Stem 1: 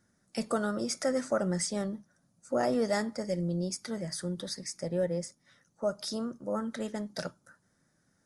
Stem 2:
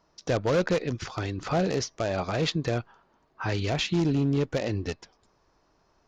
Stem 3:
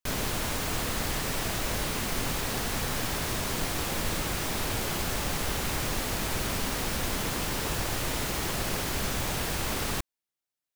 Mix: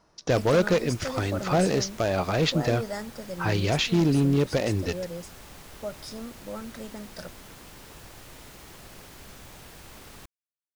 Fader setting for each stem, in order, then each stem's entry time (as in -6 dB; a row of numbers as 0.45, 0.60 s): -4.5, +3.0, -16.0 dB; 0.00, 0.00, 0.25 s